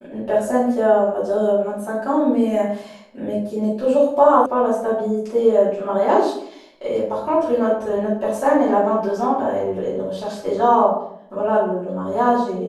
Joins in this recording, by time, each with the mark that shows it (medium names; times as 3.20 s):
4.46 s: sound stops dead